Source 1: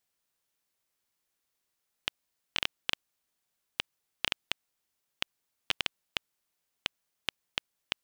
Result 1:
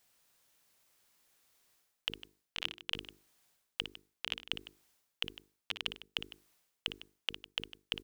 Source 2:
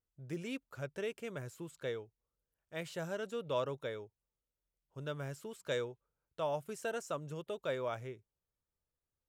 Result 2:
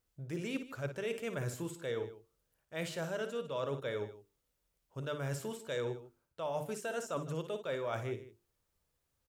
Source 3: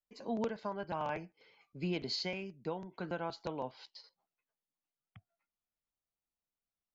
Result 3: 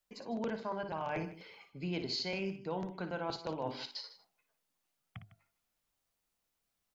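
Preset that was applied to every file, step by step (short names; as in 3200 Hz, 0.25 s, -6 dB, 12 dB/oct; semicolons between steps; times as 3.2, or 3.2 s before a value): notches 50/100/150/200/250/300/350/400/450 Hz; reverse; compressor 6:1, threshold -45 dBFS; reverse; tapped delay 57/154 ms -10/-16 dB; gain +10 dB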